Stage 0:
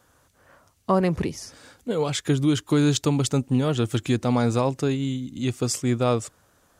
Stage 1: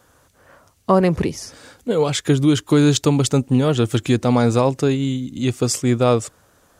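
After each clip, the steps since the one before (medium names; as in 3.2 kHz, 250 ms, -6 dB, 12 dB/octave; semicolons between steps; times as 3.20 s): peaking EQ 470 Hz +2 dB; trim +5 dB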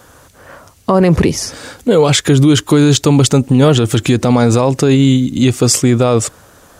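loudness maximiser +13.5 dB; trim -1 dB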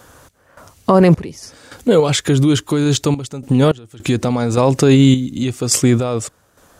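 random-step tremolo, depth 95%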